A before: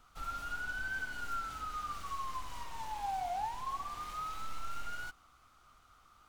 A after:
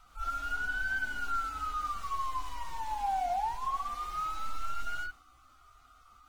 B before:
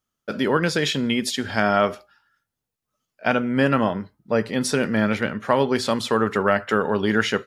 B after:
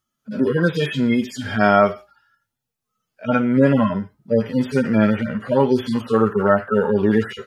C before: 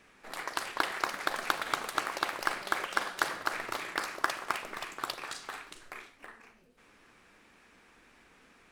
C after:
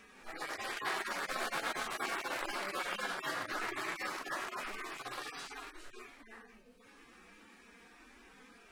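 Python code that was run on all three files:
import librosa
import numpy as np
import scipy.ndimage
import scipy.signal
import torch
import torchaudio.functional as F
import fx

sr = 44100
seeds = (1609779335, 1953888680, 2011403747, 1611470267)

y = fx.hpss_only(x, sr, part='harmonic')
y = F.gain(torch.from_numpy(y), 5.5).numpy()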